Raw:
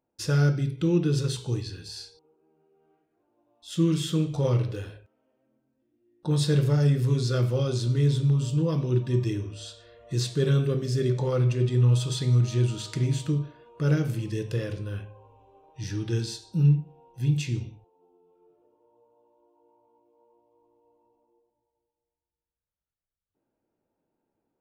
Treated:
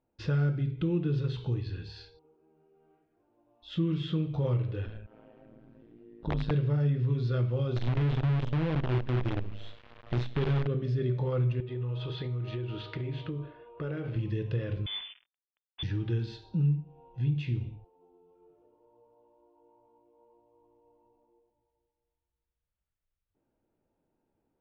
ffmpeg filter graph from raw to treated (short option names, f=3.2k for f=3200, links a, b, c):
-filter_complex "[0:a]asettb=1/sr,asplit=3[a][b][c];[a]atrim=end=4.854[d];[b]atrim=start=4.85:end=6.51,asetpts=PTS-STARTPTS,afade=t=in:d=0.004:c=qsin,afade=t=out:st=1.656:d=0.004:c=qsin,acompressor=mode=upward:threshold=-35dB:ratio=2.5:attack=3.2:release=140:knee=2.83:detection=peak,tremolo=f=110:d=0.824,aeval=exprs='(mod(7.94*val(0)+1,2)-1)/7.94':c=same[e];[c]atrim=start=6.506[f];[d][e]acrossfade=d=0.004:c1=hsin:c2=qsin[g];[g][f]acrossfade=d=0.004:c1=qsin:c2=hsin,asettb=1/sr,asplit=3[h][i][j];[h]atrim=end=7.764[k];[i]atrim=start=7.76:end=10.67,asetpts=PTS-STARTPTS,afade=t=in:d=0.004:c=qsin,afade=t=out:st=2.906:d=0.004:c=qsin,bandreject=f=4.7k:w=5.5,acrusher=bits=5:dc=4:mix=0:aa=0.000001[l];[j]atrim=start=10.666[m];[k][l]acrossfade=d=0.004:c1=hsin:c2=qsin[n];[n][m]acrossfade=d=0.004:c1=qsin:c2=hsin,asettb=1/sr,asplit=3[o][p][q];[o]atrim=end=11.604[r];[p]atrim=start=11.6:end=14.16,asetpts=PTS-STARTPTS,afade=t=in:d=0.004:c=qsin,afade=t=out:st=2.556:d=0.004:c=qsin,lowpass=4k,lowshelf=f=290:t=q:w=1.5:g=-6.5,acompressor=threshold=-32dB:ratio=5:attack=3.2:release=140:knee=1:detection=peak[s];[q]atrim=start=14.156[t];[r][s]acrossfade=d=0.004:c1=hsin:c2=qsin[u];[u][t]acrossfade=d=0.004:c1=qsin:c2=hsin,asettb=1/sr,asplit=3[v][w][x];[v]atrim=end=14.864[y];[w]atrim=start=14.86:end=15.83,asetpts=PTS-STARTPTS,afade=t=in:d=0.004:c=qsin,afade=t=out:st=0.966:d=0.004:c=qsin,aemphasis=mode=reproduction:type=75kf,acrusher=bits=6:mix=0:aa=0.5,lowpass=f=3.1k:t=q:w=0.5098,lowpass=f=3.1k:t=q:w=0.6013,lowpass=f=3.1k:t=q:w=0.9,lowpass=f=3.1k:t=q:w=2.563,afreqshift=-3600[z];[x]atrim=start=15.826[aa];[y][z]acrossfade=d=0.004:c1=hsin:c2=qsin[ab];[ab][aa]acrossfade=d=0.004:c1=qsin:c2=hsin,lowpass=f=3.4k:w=0.5412,lowpass=f=3.4k:w=1.3066,lowshelf=f=80:g=12,acompressor=threshold=-31dB:ratio=2"